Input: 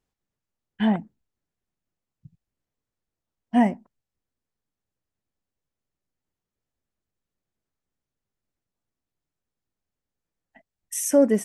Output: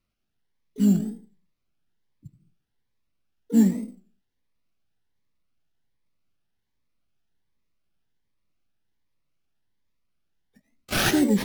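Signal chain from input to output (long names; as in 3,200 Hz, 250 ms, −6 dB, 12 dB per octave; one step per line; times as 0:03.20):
drawn EQ curve 190 Hz 0 dB, 370 Hz −4 dB, 730 Hz −21 dB, 2,900 Hz −12 dB, 5,900 Hz +4 dB
convolution reverb RT60 0.45 s, pre-delay 50 ms, DRR 8.5 dB
sample-rate reduction 7,900 Hz, jitter 0%
pitch-shifted copies added +4 semitones −12 dB, +12 semitones −16 dB
tape wow and flutter 120 cents
phaser whose notches keep moving one way rising 1.3 Hz
level +3 dB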